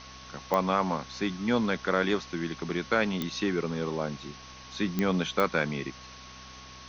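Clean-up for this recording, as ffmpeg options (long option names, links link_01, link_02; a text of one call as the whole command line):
ffmpeg -i in.wav -af "adeclick=threshold=4,bandreject=frequency=64.1:width_type=h:width=4,bandreject=frequency=128.2:width_type=h:width=4,bandreject=frequency=192.3:width_type=h:width=4,bandreject=frequency=256.4:width_type=h:width=4,bandreject=frequency=1100:width=30,afwtdn=0.0063" out.wav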